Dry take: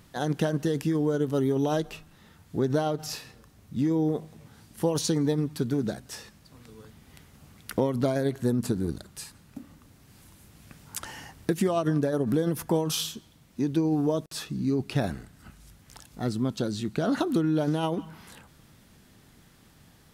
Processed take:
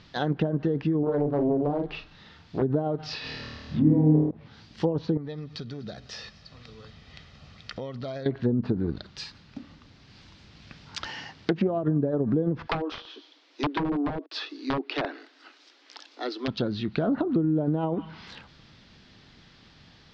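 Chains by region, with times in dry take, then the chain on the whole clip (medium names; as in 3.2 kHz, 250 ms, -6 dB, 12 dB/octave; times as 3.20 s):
1.03–2.62 s: hum notches 50/100/150/200/250/300/350 Hz + doubling 41 ms -4.5 dB + loudspeaker Doppler distortion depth 0.65 ms
3.21–4.31 s: companding laws mixed up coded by mu + distance through air 64 m + flutter echo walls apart 4.5 m, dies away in 1.3 s
5.17–8.26 s: compression 2:1, threshold -42 dBFS + comb 1.6 ms, depth 39% + delay 249 ms -22.5 dB
11.08–11.84 s: high-pass 110 Hz + loudspeaker Doppler distortion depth 0.25 ms
12.67–16.48 s: steep high-pass 270 Hz 96 dB/octave + integer overflow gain 21 dB
whole clip: steep low-pass 4.9 kHz 36 dB/octave; treble shelf 2.5 kHz +11 dB; low-pass that closes with the level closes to 540 Hz, closed at -20.5 dBFS; trim +1 dB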